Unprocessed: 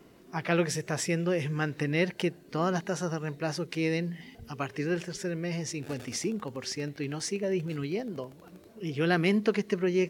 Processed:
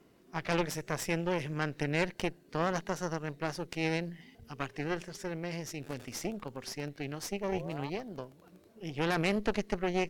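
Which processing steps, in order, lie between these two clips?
sound drawn into the spectrogram rise, 0:07.48–0:07.90, 390–930 Hz −38 dBFS
harmonic generator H 6 −11 dB, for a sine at −10.5 dBFS
level −7 dB

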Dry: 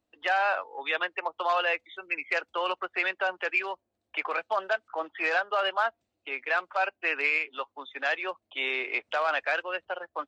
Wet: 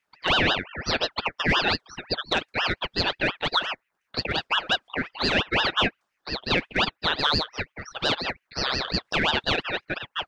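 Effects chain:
ring modulator whose carrier an LFO sweeps 1,600 Hz, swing 45%, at 5.7 Hz
level +6.5 dB

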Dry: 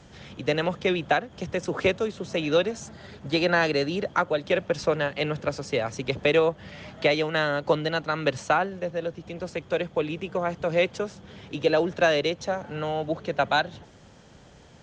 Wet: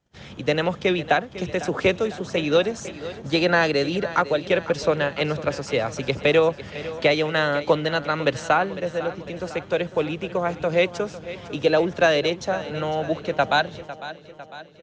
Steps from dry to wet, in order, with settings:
noise gate −46 dBFS, range −28 dB
repeating echo 502 ms, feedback 57%, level −15 dB
level +3 dB

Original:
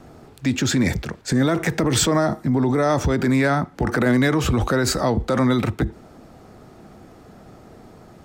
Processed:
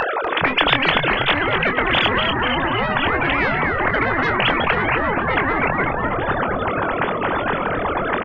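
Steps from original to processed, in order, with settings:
three sine waves on the formant tracks
reverb reduction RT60 0.53 s
upward compression, threshold −24 dBFS
harmonic generator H 5 −34 dB, 7 −36 dB, 8 −42 dB, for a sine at −4 dBFS
high-frequency loss of the air 230 metres
double-tracking delay 24 ms −8 dB
on a send: echo with shifted repeats 244 ms, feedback 55%, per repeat −130 Hz, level −11 dB
on the sum: every bin compressed towards the loudest bin 10 to 1
level +3.5 dB

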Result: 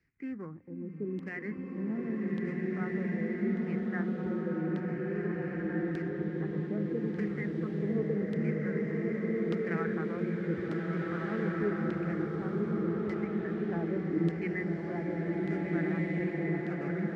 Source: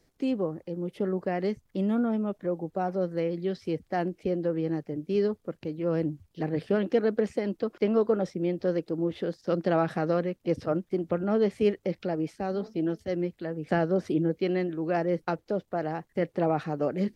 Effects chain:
gap after every zero crossing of 0.093 ms
drawn EQ curve 120 Hz 0 dB, 370 Hz −9 dB, 600 Hz −21 dB, 2,000 Hz +1 dB, 3,400 Hz −25 dB, 5,100 Hz −8 dB
echo through a band-pass that steps 477 ms, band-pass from 170 Hz, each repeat 1.4 octaves, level −2 dB
auto-filter low-pass saw down 0.84 Hz 290–3,400 Hz
high-pass filter 55 Hz
high-shelf EQ 3,900 Hz +6 dB
mains-hum notches 60/120/180/240/300 Hz
slow-attack reverb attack 1,850 ms, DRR −3 dB
level −4 dB

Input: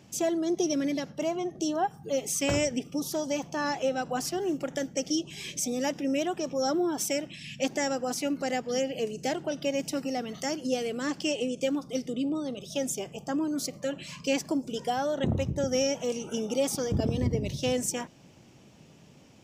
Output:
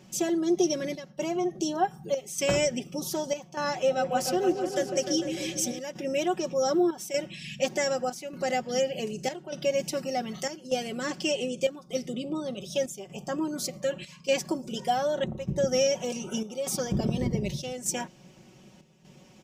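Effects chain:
comb filter 5.4 ms, depth 69%
square-wave tremolo 0.84 Hz, depth 65%, duty 80%
0:03.74–0:05.79: echo whose low-pass opens from repeat to repeat 150 ms, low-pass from 750 Hz, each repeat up 2 octaves, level −6 dB

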